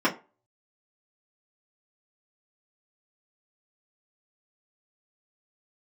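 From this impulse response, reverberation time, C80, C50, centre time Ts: 0.30 s, 20.5 dB, 15.5 dB, 14 ms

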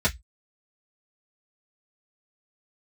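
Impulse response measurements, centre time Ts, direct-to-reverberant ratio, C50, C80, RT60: 9 ms, −7.5 dB, 22.5 dB, 35.5 dB, 0.10 s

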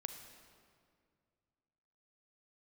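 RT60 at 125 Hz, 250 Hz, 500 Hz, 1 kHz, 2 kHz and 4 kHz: 2.8, 2.5, 2.3, 2.0, 1.8, 1.5 seconds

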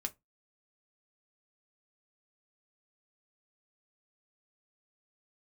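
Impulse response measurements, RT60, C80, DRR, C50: non-exponential decay, 34.5 dB, 5.5 dB, 24.0 dB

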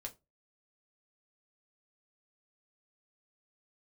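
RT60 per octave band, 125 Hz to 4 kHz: 0.35, 0.30, 0.25, 0.20, 0.15, 0.15 seconds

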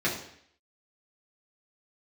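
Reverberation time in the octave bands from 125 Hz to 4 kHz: 0.65, 0.65, 0.65, 0.65, 0.70, 0.70 seconds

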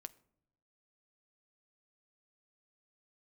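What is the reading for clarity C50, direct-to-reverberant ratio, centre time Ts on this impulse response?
21.0 dB, 12.5 dB, 2 ms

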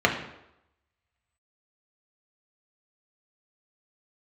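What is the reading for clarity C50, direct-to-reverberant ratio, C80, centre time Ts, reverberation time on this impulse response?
7.5 dB, 0.0 dB, 10.5 dB, 22 ms, 0.85 s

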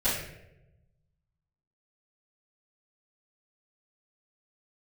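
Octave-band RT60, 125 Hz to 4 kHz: 1.7, 1.2, 1.1, 0.75, 0.75, 0.55 seconds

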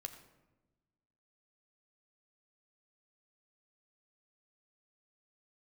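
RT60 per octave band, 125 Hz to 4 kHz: 1.6, 1.6, 1.2, 1.0, 0.85, 0.60 seconds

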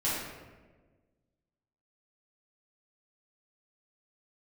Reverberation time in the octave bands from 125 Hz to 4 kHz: 1.8, 1.8, 1.6, 1.2, 1.1, 0.75 seconds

